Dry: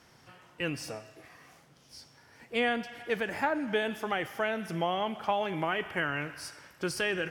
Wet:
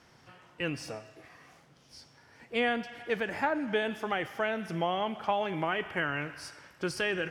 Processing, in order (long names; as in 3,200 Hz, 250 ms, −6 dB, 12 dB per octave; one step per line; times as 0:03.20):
high-shelf EQ 10,000 Hz −11 dB